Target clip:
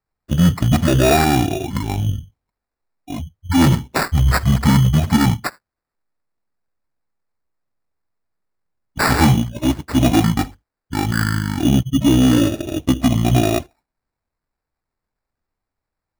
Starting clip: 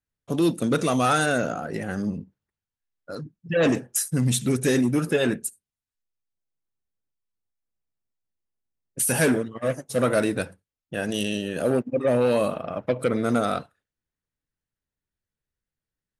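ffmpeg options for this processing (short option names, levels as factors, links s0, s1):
-af "asetrate=22696,aresample=44100,atempo=1.94306,acrusher=samples=14:mix=1:aa=0.000001,volume=2.51"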